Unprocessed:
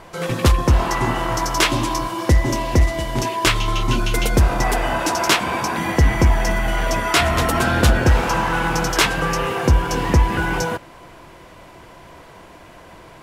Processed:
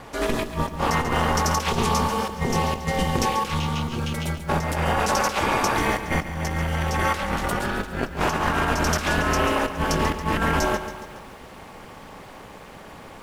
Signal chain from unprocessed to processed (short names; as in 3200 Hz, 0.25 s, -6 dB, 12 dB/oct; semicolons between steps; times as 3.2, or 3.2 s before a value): ring modulator 120 Hz; negative-ratio compressor -24 dBFS, ratio -0.5; lo-fi delay 0.139 s, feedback 55%, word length 8-bit, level -11 dB